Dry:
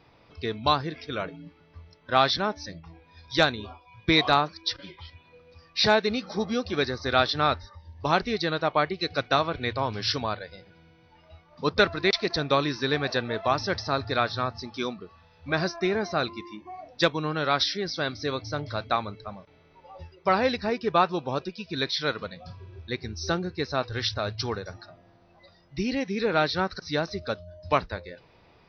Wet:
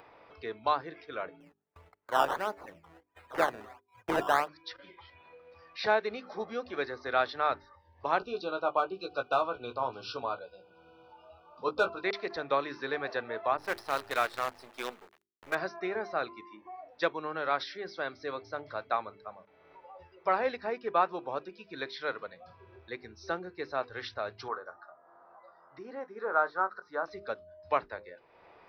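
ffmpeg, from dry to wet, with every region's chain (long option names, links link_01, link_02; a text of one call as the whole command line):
ffmpeg -i in.wav -filter_complex "[0:a]asettb=1/sr,asplit=3[link_01][link_02][link_03];[link_01]atrim=end=1.404[link_04];[link_02]atrim=start=1.4:end=4.48,asetpts=PTS-STARTPTS,afade=type=in:duration=0.004:curve=qsin,afade=type=out:start_time=3.076:duration=0.004:curve=qsin,agate=range=-30dB:threshold=-52dB:ratio=16:release=100:detection=peak,acrusher=samples=14:mix=1:aa=0.000001:lfo=1:lforange=14:lforate=1.5[link_05];[link_03]atrim=start=4.476[link_06];[link_04][link_05]acrossfade=duration=0.004:curve1=hsin:curve2=qsin[link_07];[link_07][link_06]acrossfade=duration=0.004:curve1=qsin:curve2=hsin,asettb=1/sr,asplit=3[link_08][link_09][link_10];[link_08]atrim=end=8.184[link_11];[link_09]atrim=start=8.18:end=12.04,asetpts=PTS-STARTPTS,afade=type=in:duration=0.004:curve=qsin,afade=type=out:start_time=3.856:duration=0.004:curve=qsin,asoftclip=type=hard:threshold=-13.5dB,asuperstop=centerf=1900:order=20:qfactor=2.2,asplit=2[link_12][link_13];[link_13]adelay=16,volume=-6.5dB[link_14];[link_12][link_14]amix=inputs=2:normalize=0,atrim=end_sample=170226[link_15];[link_10]atrim=start=12.036[link_16];[link_11][link_15]acrossfade=duration=0.004:curve1=hsin:curve2=qsin[link_17];[link_17][link_16]acrossfade=duration=0.004:curve1=qsin:curve2=hsin,asettb=1/sr,asplit=3[link_18][link_19][link_20];[link_18]atrim=end=13.574[link_21];[link_19]atrim=start=13.57:end=15.55,asetpts=PTS-STARTPTS,afade=type=in:duration=0.004:curve=qsin,afade=type=out:start_time=1.976:duration=0.004:curve=qsin,acrusher=bits=5:dc=4:mix=0:aa=0.000001,adynamicequalizer=threshold=0.0126:dfrequency=1800:dqfactor=0.7:tfrequency=1800:tqfactor=0.7:attack=5:release=100:ratio=0.375:range=2.5:mode=boostabove:tftype=highshelf[link_22];[link_20]atrim=start=15.546[link_23];[link_21][link_22]acrossfade=duration=0.004:curve1=hsin:curve2=qsin[link_24];[link_24][link_23]acrossfade=duration=0.004:curve1=qsin:curve2=hsin,asettb=1/sr,asplit=3[link_25][link_26][link_27];[link_25]atrim=end=24.484[link_28];[link_26]atrim=start=24.48:end=27.06,asetpts=PTS-STARTPTS,afade=type=in:duration=0.004:curve=qsin,afade=type=out:start_time=2.576:duration=0.004:curve=qsin,highpass=frequency=530:poles=1,highshelf=frequency=1800:width_type=q:width=3:gain=-11.5,asplit=2[link_29][link_30];[link_30]adelay=24,volume=-12.5dB[link_31];[link_29][link_31]amix=inputs=2:normalize=0,atrim=end_sample=113778[link_32];[link_27]atrim=start=27.056[link_33];[link_28][link_32]acrossfade=duration=0.004:curve1=hsin:curve2=qsin[link_34];[link_34][link_33]acrossfade=duration=0.004:curve1=qsin:curve2=hsin,acrossover=split=350 2400:gain=0.158 1 0.178[link_35][link_36][link_37];[link_35][link_36][link_37]amix=inputs=3:normalize=0,bandreject=frequency=50:width_type=h:width=6,bandreject=frequency=100:width_type=h:width=6,bandreject=frequency=150:width_type=h:width=6,bandreject=frequency=200:width_type=h:width=6,bandreject=frequency=250:width_type=h:width=6,bandreject=frequency=300:width_type=h:width=6,bandreject=frequency=350:width_type=h:width=6,bandreject=frequency=400:width_type=h:width=6,acompressor=mode=upward:threshold=-43dB:ratio=2.5,volume=-4dB" out.wav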